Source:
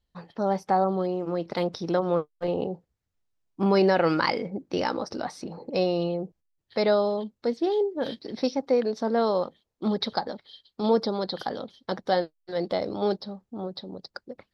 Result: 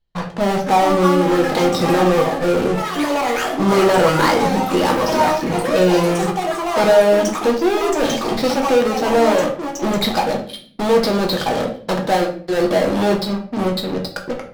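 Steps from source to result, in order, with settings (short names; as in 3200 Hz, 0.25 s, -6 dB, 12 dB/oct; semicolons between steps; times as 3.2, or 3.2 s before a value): LPF 4600 Hz; bell 290 Hz -2.5 dB 0.77 oct; in parallel at -8 dB: fuzz box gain 41 dB, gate -48 dBFS; on the sum: echoes that change speed 0.561 s, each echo +7 st, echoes 3, each echo -6 dB; shoebox room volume 57 m³, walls mixed, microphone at 0.61 m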